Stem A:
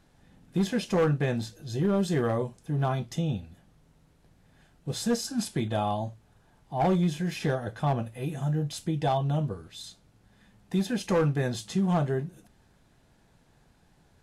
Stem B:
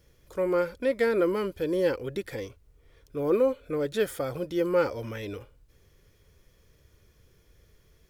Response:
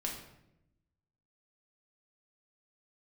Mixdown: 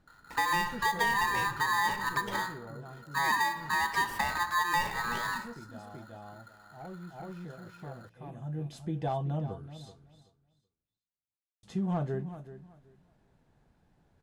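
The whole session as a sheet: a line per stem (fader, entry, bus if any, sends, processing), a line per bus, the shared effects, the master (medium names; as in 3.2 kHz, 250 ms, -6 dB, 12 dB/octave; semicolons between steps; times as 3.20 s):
-5.0 dB, 0.00 s, muted 10.23–11.63 s, no send, echo send -14 dB, auto duck -15 dB, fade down 1.70 s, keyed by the second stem
+2.5 dB, 0.00 s, send -5.5 dB, no echo send, gate with hold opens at -51 dBFS; spectral gate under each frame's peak -30 dB strong; polarity switched at an audio rate 1.4 kHz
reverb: on, RT60 0.85 s, pre-delay 5 ms
echo: feedback delay 379 ms, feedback 20%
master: treble shelf 2.5 kHz -10.5 dB; compression 6:1, threshold -25 dBFS, peak gain reduction 10.5 dB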